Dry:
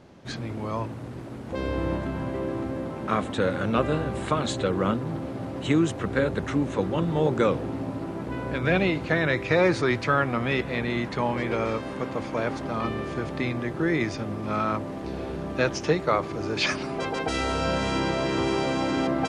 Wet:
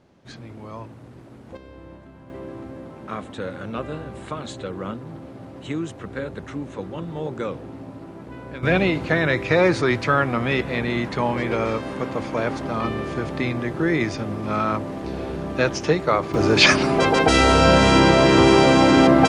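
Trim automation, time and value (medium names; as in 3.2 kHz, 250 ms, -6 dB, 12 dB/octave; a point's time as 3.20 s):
-6.5 dB
from 1.57 s -15.5 dB
from 2.30 s -6 dB
from 8.63 s +3.5 dB
from 16.34 s +11.5 dB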